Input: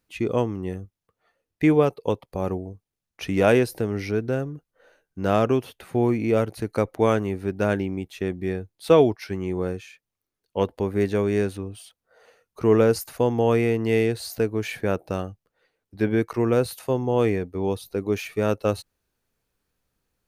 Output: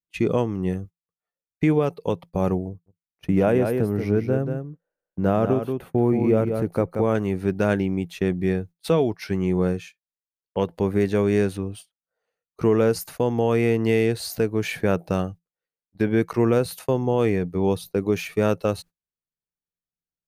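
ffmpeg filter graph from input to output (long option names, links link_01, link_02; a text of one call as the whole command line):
ffmpeg -i in.wav -filter_complex "[0:a]asettb=1/sr,asplit=3[link_01][link_02][link_03];[link_01]atrim=end=2.684[link_04];[link_02]atrim=start=2.68:end=7.15,asetpts=PTS-STARTPTS,afade=type=in:duration=0.004:curve=qsin,afade=type=out:start_time=4.466:duration=0.004:curve=qsin,equalizer=frequency=4900:width_type=o:width=2.8:gain=-12.5,aecho=1:1:181:0.447,atrim=end_sample=197127[link_05];[link_03]atrim=start=7.146[link_06];[link_04][link_05]acrossfade=duration=0.004:curve1=hsin:curve2=qsin[link_07];[link_07][link_06]acrossfade=duration=0.004:curve1=qsin:curve2=hsin,agate=range=-28dB:threshold=-41dB:ratio=16:detection=peak,equalizer=frequency=170:width_type=o:width=0.21:gain=11.5,alimiter=limit=-13dB:level=0:latency=1:release=278,volume=3dB" out.wav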